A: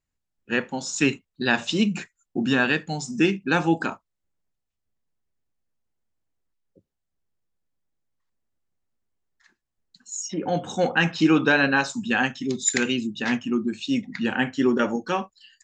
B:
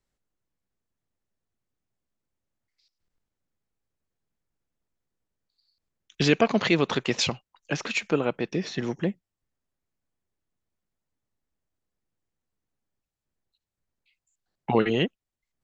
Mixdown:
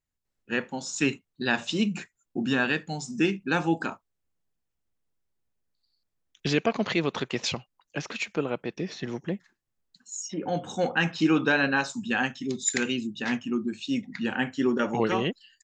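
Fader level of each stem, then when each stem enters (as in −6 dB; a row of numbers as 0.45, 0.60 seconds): −4.0, −4.0 decibels; 0.00, 0.25 seconds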